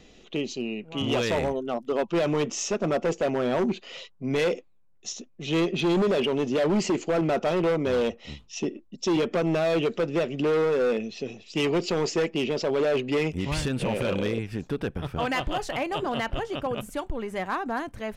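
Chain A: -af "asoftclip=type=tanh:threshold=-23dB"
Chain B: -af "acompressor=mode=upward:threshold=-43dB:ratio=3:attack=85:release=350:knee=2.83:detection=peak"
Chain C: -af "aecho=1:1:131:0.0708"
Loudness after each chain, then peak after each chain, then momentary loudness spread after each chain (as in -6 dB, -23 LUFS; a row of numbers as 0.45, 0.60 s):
-30.0, -27.0, -27.0 LUFS; -24.0, -12.0, -19.5 dBFS; 8, 9, 9 LU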